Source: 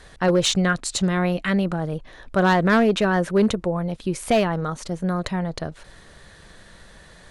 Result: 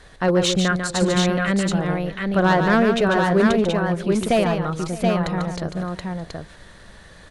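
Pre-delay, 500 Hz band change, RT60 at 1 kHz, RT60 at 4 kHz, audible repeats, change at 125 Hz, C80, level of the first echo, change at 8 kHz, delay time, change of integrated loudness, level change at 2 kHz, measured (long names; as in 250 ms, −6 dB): no reverb audible, +2.5 dB, no reverb audible, no reverb audible, 3, +2.0 dB, no reverb audible, −6.5 dB, 0.0 dB, 145 ms, +1.5 dB, +2.0 dB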